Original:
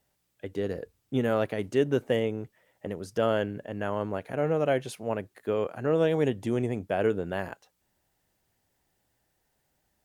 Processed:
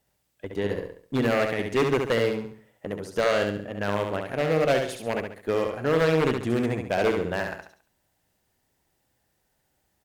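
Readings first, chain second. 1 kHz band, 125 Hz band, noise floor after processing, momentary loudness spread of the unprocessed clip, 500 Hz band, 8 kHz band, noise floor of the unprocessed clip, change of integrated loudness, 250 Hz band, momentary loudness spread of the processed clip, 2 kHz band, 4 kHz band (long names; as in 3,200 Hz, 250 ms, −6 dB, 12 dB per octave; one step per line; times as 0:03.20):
+5.0 dB, +2.5 dB, −73 dBFS, 13 LU, +3.0 dB, +6.5 dB, −75 dBFS, +3.0 dB, +2.5 dB, 12 LU, +7.5 dB, +7.0 dB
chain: wave folding −18.5 dBFS
harmonic generator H 3 −25 dB, 8 −29 dB, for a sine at −18.5 dBFS
dynamic equaliser 2,100 Hz, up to +5 dB, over −46 dBFS, Q 1
repeating echo 69 ms, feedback 38%, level −5 dB
level +2.5 dB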